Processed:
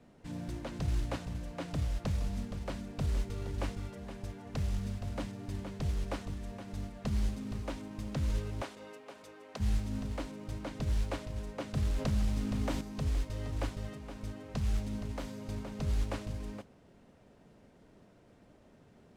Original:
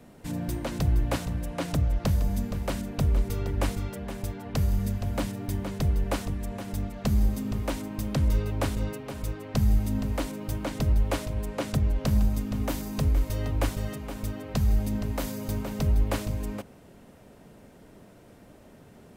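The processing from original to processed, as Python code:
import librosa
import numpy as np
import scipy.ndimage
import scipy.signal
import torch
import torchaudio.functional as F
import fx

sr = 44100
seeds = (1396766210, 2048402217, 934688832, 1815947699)

y = fx.highpass(x, sr, hz=420.0, slope=12, at=(8.62, 9.6))
y = fx.mod_noise(y, sr, seeds[0], snr_db=16)
y = fx.air_absorb(y, sr, metres=66.0)
y = fx.env_flatten(y, sr, amount_pct=50, at=(11.77, 12.81))
y = y * librosa.db_to_amplitude(-8.5)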